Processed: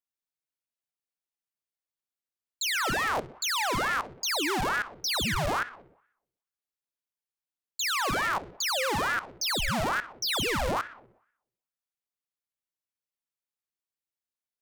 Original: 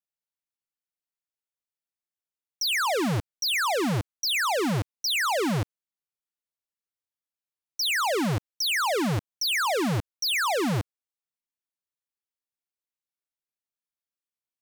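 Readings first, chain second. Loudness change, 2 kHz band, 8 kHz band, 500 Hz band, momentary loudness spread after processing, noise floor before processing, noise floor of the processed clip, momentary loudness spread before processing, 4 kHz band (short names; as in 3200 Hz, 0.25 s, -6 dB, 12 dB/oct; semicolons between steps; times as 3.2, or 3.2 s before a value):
-2.5 dB, -1.0 dB, -1.0 dB, -4.5 dB, 4 LU, under -85 dBFS, under -85 dBFS, 5 LU, -3.0 dB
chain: darkening echo 62 ms, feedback 57%, low-pass 3800 Hz, level -15 dB; ring modulator with a swept carrier 910 Hz, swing 75%, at 2.3 Hz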